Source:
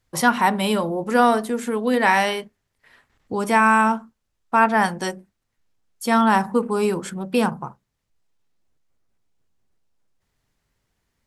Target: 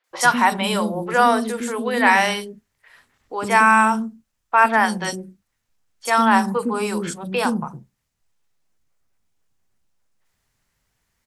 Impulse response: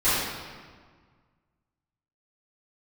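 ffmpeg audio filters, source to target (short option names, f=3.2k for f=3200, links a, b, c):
-filter_complex "[0:a]tiltshelf=f=1.3k:g=-3,acrossover=split=370|3700[a][b][c];[c]adelay=40[d];[a]adelay=110[e];[e][b][d]amix=inputs=3:normalize=0,acrossover=split=9800[f][g];[g]acompressor=threshold=-51dB:ratio=4:attack=1:release=60[h];[f][h]amix=inputs=2:normalize=0,volume=3dB"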